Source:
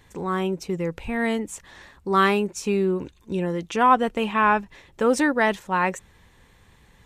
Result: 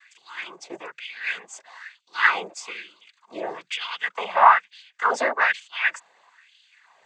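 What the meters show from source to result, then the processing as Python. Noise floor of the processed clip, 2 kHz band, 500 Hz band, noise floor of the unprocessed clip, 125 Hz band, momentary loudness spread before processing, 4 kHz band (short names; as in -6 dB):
-68 dBFS, +3.5 dB, -8.0 dB, -56 dBFS, under -25 dB, 10 LU, +2.5 dB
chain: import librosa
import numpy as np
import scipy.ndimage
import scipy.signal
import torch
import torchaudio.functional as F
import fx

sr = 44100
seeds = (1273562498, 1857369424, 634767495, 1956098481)

y = fx.filter_lfo_highpass(x, sr, shape='sine', hz=1.1, low_hz=640.0, high_hz=3300.0, q=5.2)
y = fx.noise_vocoder(y, sr, seeds[0], bands=16)
y = y * 10.0 ** (-2.5 / 20.0)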